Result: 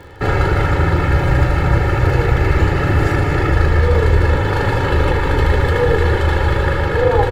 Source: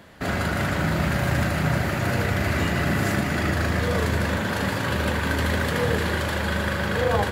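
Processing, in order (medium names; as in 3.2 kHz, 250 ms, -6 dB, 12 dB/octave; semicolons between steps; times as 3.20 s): octave divider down 1 oct, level -2 dB; low-pass 1.7 kHz 6 dB/octave; comb 2.3 ms, depth 92%; in parallel at +1 dB: gain riding; on the sum: crackle 43 per s -33 dBFS; on a send: delay 215 ms -11 dB; on the sum: trim -1 dB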